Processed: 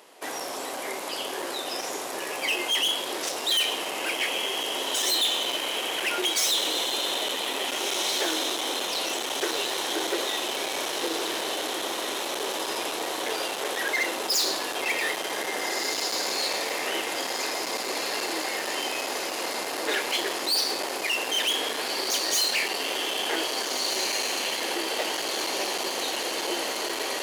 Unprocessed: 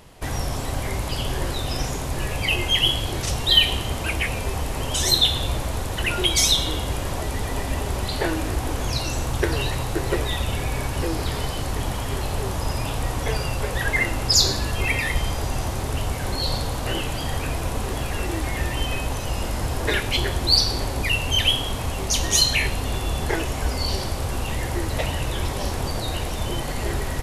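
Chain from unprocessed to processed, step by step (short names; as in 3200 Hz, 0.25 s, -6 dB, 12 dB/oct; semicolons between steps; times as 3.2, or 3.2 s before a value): diffused feedback echo 1.756 s, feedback 71%, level -5.5 dB; hard clip -20 dBFS, distortion -10 dB; HPF 320 Hz 24 dB/oct; gain -1 dB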